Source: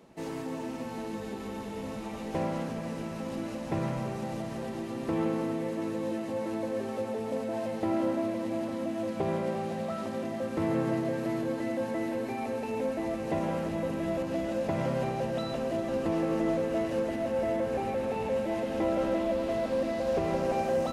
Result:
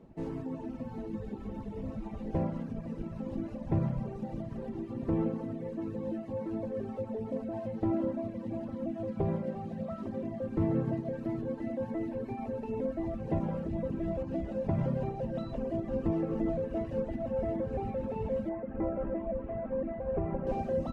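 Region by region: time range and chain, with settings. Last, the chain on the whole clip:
0:18.49–0:20.47: low-pass filter 2,200 Hz 24 dB per octave + low-shelf EQ 440 Hz −3.5 dB
whole clip: reverb reduction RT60 1.8 s; spectral tilt −4 dB per octave; level −5.5 dB

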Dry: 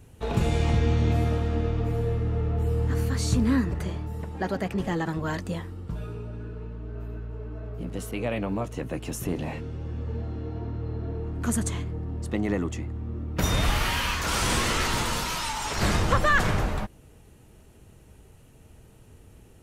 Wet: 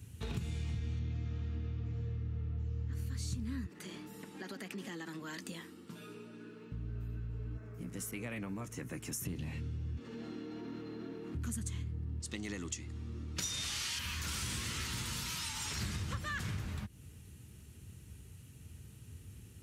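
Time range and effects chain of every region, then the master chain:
0:00.99–0:02.93: high-shelf EQ 6,800 Hz −10.5 dB + bad sample-rate conversion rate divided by 3×, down none, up filtered
0:03.66–0:06.72: high-pass filter 240 Hz 24 dB per octave + downward compressor 3 to 1, threshold −35 dBFS
0:07.57–0:09.25: high-pass filter 340 Hz 6 dB per octave + flat-topped bell 3,500 Hz −8.5 dB 1 octave
0:09.97–0:11.35: high-pass filter 240 Hz 24 dB per octave + envelope flattener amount 70%
0:12.20–0:13.99: low-pass filter 6,300 Hz + bass and treble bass −11 dB, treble +15 dB
whole clip: high-pass filter 68 Hz 24 dB per octave; guitar amp tone stack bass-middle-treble 6-0-2; downward compressor 5 to 1, threshold −53 dBFS; level +16 dB

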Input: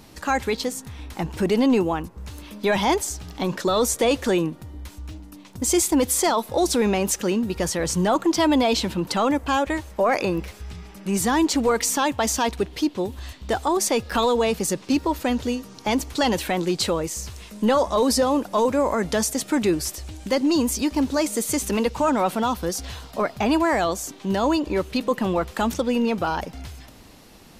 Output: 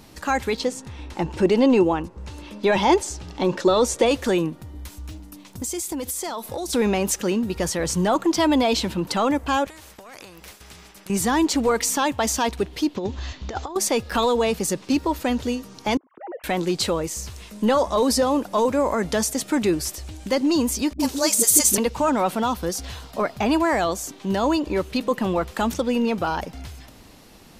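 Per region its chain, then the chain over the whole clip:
0:00.59–0:04.06: low-pass filter 7,900 Hz + hollow resonant body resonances 360/530/880/2,700 Hz, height 7 dB
0:04.75–0:06.73: high-shelf EQ 6,100 Hz +6.5 dB + downward compressor 12 to 1, threshold −25 dBFS
0:09.67–0:11.10: downward expander −39 dBFS + downward compressor 10 to 1, threshold −30 dBFS + every bin compressed towards the loudest bin 2 to 1
0:12.96–0:13.76: Butterworth low-pass 7,200 Hz 96 dB per octave + compressor whose output falls as the input rises −26 dBFS, ratio −0.5
0:15.97–0:16.44: three sine waves on the formant tracks + low-pass filter 1,500 Hz 24 dB per octave + volume swells 392 ms
0:20.93–0:21.78: bass and treble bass −4 dB, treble +13 dB + all-pass dispersion highs, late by 65 ms, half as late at 340 Hz
whole clip: no processing

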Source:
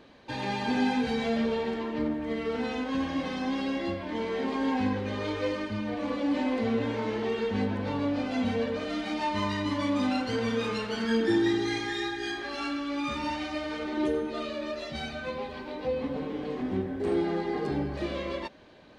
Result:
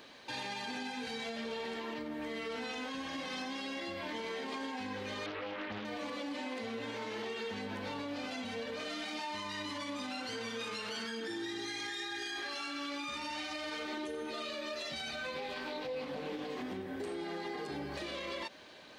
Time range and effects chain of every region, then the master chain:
0:05.26–0:05.85: low-pass filter 2,700 Hz 24 dB per octave + mains-hum notches 60/120/180 Hz + highs frequency-modulated by the lows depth 0.71 ms
0:15.34–0:16.48: double-tracking delay 20 ms −4 dB + highs frequency-modulated by the lows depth 0.19 ms
whole clip: downward compressor, threshold −32 dBFS; spectral tilt +3 dB per octave; brickwall limiter −32.5 dBFS; level +1 dB

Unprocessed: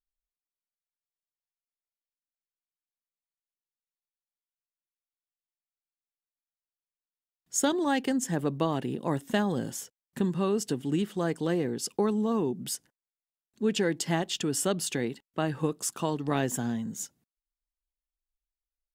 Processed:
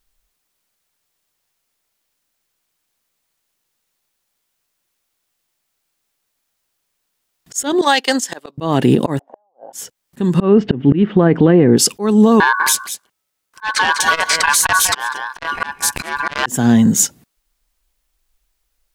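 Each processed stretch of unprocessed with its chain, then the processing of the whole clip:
0:07.81–0:08.58: noise gate −29 dBFS, range −16 dB + high-pass filter 620 Hz + parametric band 4,400 Hz +8 dB 0.97 octaves
0:09.19–0:09.73: downward compressor 3 to 1, threshold −38 dBFS + flat-topped band-pass 710 Hz, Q 2.8 + gate with flip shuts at −43 dBFS, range −38 dB
0:10.40–0:11.77: low-pass filter 2,700 Hz 24 dB per octave + low-shelf EQ 480 Hz +6 dB
0:12.40–0:16.46: ring modulation 1,300 Hz + single-tap delay 197 ms −13.5 dB + saturating transformer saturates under 2,500 Hz
whole clip: volume swells 399 ms; boost into a limiter +25 dB; level −1 dB

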